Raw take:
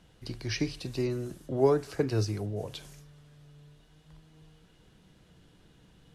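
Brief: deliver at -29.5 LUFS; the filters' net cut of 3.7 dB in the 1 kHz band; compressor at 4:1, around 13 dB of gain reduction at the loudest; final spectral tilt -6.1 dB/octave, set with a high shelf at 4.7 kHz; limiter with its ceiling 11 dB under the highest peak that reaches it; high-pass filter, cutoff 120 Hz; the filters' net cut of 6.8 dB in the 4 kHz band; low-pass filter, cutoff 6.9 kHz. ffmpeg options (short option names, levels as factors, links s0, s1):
-af "highpass=120,lowpass=6900,equalizer=f=1000:t=o:g=-4.5,equalizer=f=4000:t=o:g=-6,highshelf=f=4700:g=-3.5,acompressor=threshold=0.0178:ratio=4,volume=5.96,alimiter=limit=0.112:level=0:latency=1"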